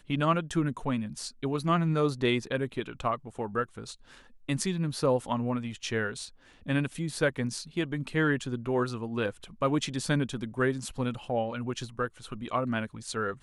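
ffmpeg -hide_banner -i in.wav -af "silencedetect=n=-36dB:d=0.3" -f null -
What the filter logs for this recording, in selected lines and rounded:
silence_start: 3.92
silence_end: 4.49 | silence_duration: 0.56
silence_start: 6.26
silence_end: 6.68 | silence_duration: 0.41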